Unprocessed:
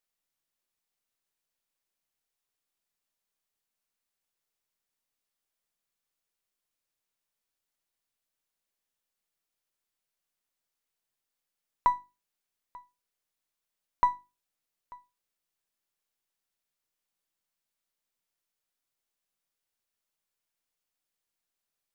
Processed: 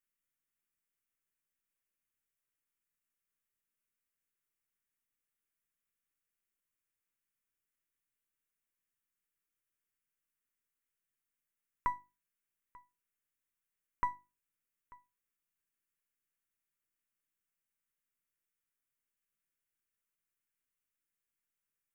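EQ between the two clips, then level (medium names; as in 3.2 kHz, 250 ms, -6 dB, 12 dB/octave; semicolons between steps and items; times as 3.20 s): static phaser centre 1.8 kHz, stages 4; -2.0 dB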